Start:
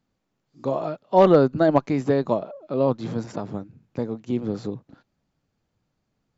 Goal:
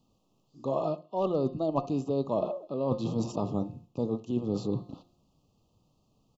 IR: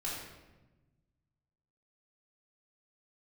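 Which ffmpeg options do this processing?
-filter_complex "[0:a]bandreject=frequency=176.5:width_type=h:width=4,bandreject=frequency=353:width_type=h:width=4,bandreject=frequency=529.5:width_type=h:width=4,bandreject=frequency=706:width_type=h:width=4,bandreject=frequency=882.5:width_type=h:width=4,bandreject=frequency=1059:width_type=h:width=4,bandreject=frequency=1235.5:width_type=h:width=4,bandreject=frequency=1412:width_type=h:width=4,bandreject=frequency=1588.5:width_type=h:width=4,bandreject=frequency=1765:width_type=h:width=4,bandreject=frequency=1941.5:width_type=h:width=4,bandreject=frequency=2118:width_type=h:width=4,bandreject=frequency=2294.5:width_type=h:width=4,bandreject=frequency=2471:width_type=h:width=4,bandreject=frequency=2647.5:width_type=h:width=4,bandreject=frequency=2824:width_type=h:width=4,bandreject=frequency=3000.5:width_type=h:width=4,bandreject=frequency=3177:width_type=h:width=4,bandreject=frequency=3353.5:width_type=h:width=4,bandreject=frequency=3530:width_type=h:width=4,bandreject=frequency=3706.5:width_type=h:width=4,bandreject=frequency=3883:width_type=h:width=4,bandreject=frequency=4059.5:width_type=h:width=4,bandreject=frequency=4236:width_type=h:width=4,bandreject=frequency=4412.5:width_type=h:width=4,bandreject=frequency=4589:width_type=h:width=4,bandreject=frequency=4765.5:width_type=h:width=4,bandreject=frequency=4942:width_type=h:width=4,areverse,acompressor=threshold=-32dB:ratio=8,areverse,asuperstop=centerf=1800:order=20:qfactor=1.4,asplit=2[link_01][link_02];[link_02]adelay=65,lowpass=frequency=840:poles=1,volume=-16dB,asplit=2[link_03][link_04];[link_04]adelay=65,lowpass=frequency=840:poles=1,volume=0.28,asplit=2[link_05][link_06];[link_06]adelay=65,lowpass=frequency=840:poles=1,volume=0.28[link_07];[link_01][link_03][link_05][link_07]amix=inputs=4:normalize=0,volume=6dB"

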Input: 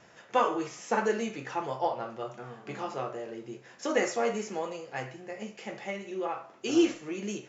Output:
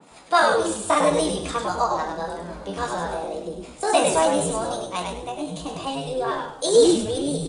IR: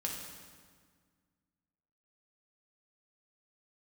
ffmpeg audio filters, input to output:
-filter_complex "[0:a]highpass=frequency=92:width=0.5412,highpass=frequency=92:width=1.3066,equalizer=frequency=1600:width=1.4:gain=-10.5,acontrast=61,asetrate=60591,aresample=44100,atempo=0.727827,acrossover=split=460[link_01][link_02];[link_01]aeval=exprs='val(0)*(1-0.5/2+0.5/2*cos(2*PI*3.7*n/s))':channel_layout=same[link_03];[link_02]aeval=exprs='val(0)*(1-0.5/2-0.5/2*cos(2*PI*3.7*n/s))':channel_layout=same[link_04];[link_03][link_04]amix=inputs=2:normalize=0,asplit=5[link_05][link_06][link_07][link_08][link_09];[link_06]adelay=101,afreqshift=-120,volume=-4dB[link_10];[link_07]adelay=202,afreqshift=-240,volume=-14.2dB[link_11];[link_08]adelay=303,afreqshift=-360,volume=-24.3dB[link_12];[link_09]adelay=404,afreqshift=-480,volume=-34.5dB[link_13];[link_05][link_10][link_11][link_12][link_13]amix=inputs=5:normalize=0,asplit=2[link_14][link_15];[1:a]atrim=start_sample=2205,lowpass=1000,adelay=85[link_16];[link_15][link_16]afir=irnorm=-1:irlink=0,volume=-16dB[link_17];[link_14][link_17]amix=inputs=2:normalize=0,adynamicequalizer=threshold=0.00794:dfrequency=3000:dqfactor=0.7:tfrequency=3000:tqfactor=0.7:attack=5:release=100:ratio=0.375:range=3:mode=boostabove:tftype=highshelf,volume=4.5dB"

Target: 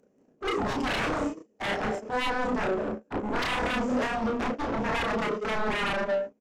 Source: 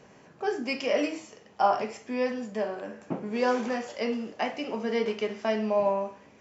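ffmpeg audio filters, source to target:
ffmpeg -i in.wav -filter_complex "[0:a]equalizer=frequency=125:width_type=o:width=1:gain=-5,equalizer=frequency=250:width_type=o:width=1:gain=11,equalizer=frequency=500:width_type=o:width=1:gain=8,equalizer=frequency=1000:width_type=o:width=1:gain=-11,equalizer=frequency=2000:width_type=o:width=1:gain=-6,equalizer=frequency=4000:width_type=o:width=1:gain=-9,acompressor=mode=upward:threshold=-27dB:ratio=2.5,aecho=1:1:183.7|236.2:0.282|0.282,aeval=exprs='0.473*sin(PI/2*8.91*val(0)/0.473)':channel_layout=same,acontrast=74,agate=range=-59dB:threshold=-3dB:ratio=16:detection=peak,asplit=2[link_01][link_02];[link_02]adelay=32,volume=-3dB[link_03];[link_01][link_03]amix=inputs=2:normalize=0" out.wav

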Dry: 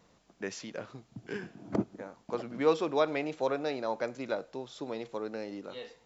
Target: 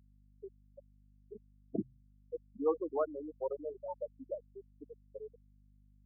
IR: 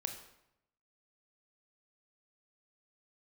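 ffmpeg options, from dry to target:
-af "afftfilt=real='re*gte(hypot(re,im),0.141)':imag='im*gte(hypot(re,im),0.141)':win_size=1024:overlap=0.75,bandreject=frequency=64.63:width_type=h:width=4,bandreject=frequency=129.26:width_type=h:width=4,aeval=exprs='val(0)+0.00126*(sin(2*PI*50*n/s)+sin(2*PI*2*50*n/s)/2+sin(2*PI*3*50*n/s)/3+sin(2*PI*4*50*n/s)/4+sin(2*PI*5*50*n/s)/5)':channel_layout=same,volume=-5dB"

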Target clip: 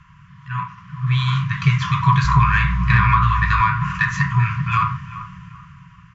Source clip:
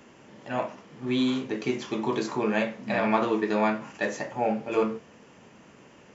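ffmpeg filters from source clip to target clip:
ffmpeg -i in.wav -filter_complex "[0:a]asettb=1/sr,asplit=3[link_01][link_02][link_03];[link_01]atrim=end=2.244[link_04];[link_02]atrim=start=2.24:end=3.61,asetpts=PTS-STARTPTS,afade=type=in:duration=0.004:curve=qsin,afade=type=out:start_time=1.366:duration=0.004:curve=qsin,aeval=exprs='val(0)+0.00316*(sin(2*PI*60*n/s)+sin(2*PI*2*60*n/s)/2+sin(2*PI*3*60*n/s)/3+sin(2*PI*4*60*n/s)/4+sin(2*PI*5*60*n/s)/5)':channel_layout=same[link_05];[link_03]atrim=start=3.606[link_06];[link_04][link_05]acrossfade=duration=0.004:curve1=hsin:curve2=qsin[link_07];[link_07][link_06]acrossfade=duration=0.004:curve1=qsin:curve2=hsin,afftfilt=real='re*(1-between(b*sr/4096,190,960))':imag='im*(1-between(b*sr/4096,190,960))':win_size=4096:overlap=0.75,dynaudnorm=framelen=220:gausssize=13:maxgain=16.5dB,equalizer=frequency=650:width_type=o:width=2.2:gain=9,asplit=2[link_08][link_09];[link_09]adelay=388,lowpass=frequency=2000:poles=1,volume=-16dB,asplit=2[link_10][link_11];[link_11]adelay=388,lowpass=frequency=2000:poles=1,volume=0.3,asplit=2[link_12][link_13];[link_13]adelay=388,lowpass=frequency=2000:poles=1,volume=0.3[link_14];[link_10][link_12][link_14]amix=inputs=3:normalize=0[link_15];[link_08][link_15]amix=inputs=2:normalize=0,acrossover=split=250[link_16][link_17];[link_17]acompressor=threshold=-15dB:ratio=6[link_18];[link_16][link_18]amix=inputs=2:normalize=0,aemphasis=mode=reproduction:type=riaa,asplit=2[link_19][link_20];[link_20]asoftclip=type=tanh:threshold=-11dB,volume=-4.5dB[link_21];[link_19][link_21]amix=inputs=2:normalize=0,volume=-2dB" out.wav

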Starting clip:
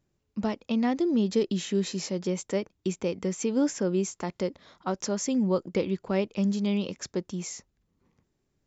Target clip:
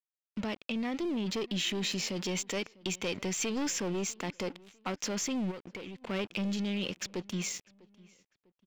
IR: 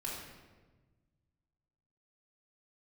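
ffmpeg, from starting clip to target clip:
-filter_complex "[0:a]asettb=1/sr,asplit=3[link_01][link_02][link_03];[link_01]atrim=end=2.164[link_04];[link_02]atrim=start=2.16:end=3.8,asetpts=PTS-STARTPTS,afade=type=in:duration=0.004:curve=qsin,afade=type=out:start_time=1.636:duration=0.004:curve=qsin,highshelf=frequency=2200:gain=6.5[link_05];[link_03]atrim=start=3.796[link_06];[link_04][link_05]acrossfade=duration=0.004:curve1=hsin:curve2=qsin[link_07];[link_07][link_06]acrossfade=duration=0.004:curve1=qsin:curve2=hsin,aeval=exprs='sgn(val(0))*max(abs(val(0))-0.00398,0)':channel_layout=same,dynaudnorm=framelen=340:gausssize=11:maxgain=3.5dB,aeval=exprs='(tanh(14.1*val(0)+0.2)-tanh(0.2))/14.1':channel_layout=same,alimiter=level_in=5.5dB:limit=-24dB:level=0:latency=1:release=31,volume=-5.5dB,asplit=2[link_08][link_09];[link_09]adelay=649,lowpass=frequency=3400:poles=1,volume=-23dB,asplit=2[link_10][link_11];[link_11]adelay=649,lowpass=frequency=3400:poles=1,volume=0.37[link_12];[link_08][link_10][link_12]amix=inputs=3:normalize=0,asplit=3[link_13][link_14][link_15];[link_13]afade=type=out:start_time=5.5:duration=0.02[link_16];[link_14]acompressor=threshold=-47dB:ratio=3,afade=type=in:start_time=5.5:duration=0.02,afade=type=out:start_time=6.01:duration=0.02[link_17];[link_15]afade=type=in:start_time=6.01:duration=0.02[link_18];[link_16][link_17][link_18]amix=inputs=3:normalize=0,equalizer=frequency=2800:width_type=o:width=1.3:gain=11,volume=1.5dB"

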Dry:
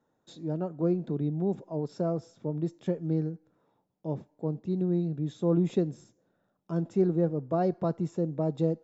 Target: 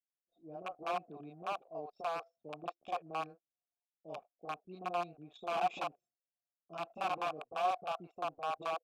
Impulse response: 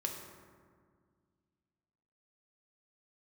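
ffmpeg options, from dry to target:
-filter_complex "[0:a]highpass=frequency=90:poles=1,acrossover=split=1800[link_01][link_02];[link_02]dynaudnorm=framelen=440:gausssize=5:maxgain=14dB[link_03];[link_01][link_03]amix=inputs=2:normalize=0,aeval=exprs='(mod(11.2*val(0)+1,2)-1)/11.2':channel_layout=same,asplit=3[link_04][link_05][link_06];[link_04]bandpass=frequency=730:width_type=q:width=8,volume=0dB[link_07];[link_05]bandpass=frequency=1090:width_type=q:width=8,volume=-6dB[link_08];[link_06]bandpass=frequency=2440:width_type=q:width=8,volume=-9dB[link_09];[link_07][link_08][link_09]amix=inputs=3:normalize=0,anlmdn=0.0000631,acrossover=split=520[link_10][link_11];[link_11]adelay=40[link_12];[link_10][link_12]amix=inputs=2:normalize=0,volume=4dB"

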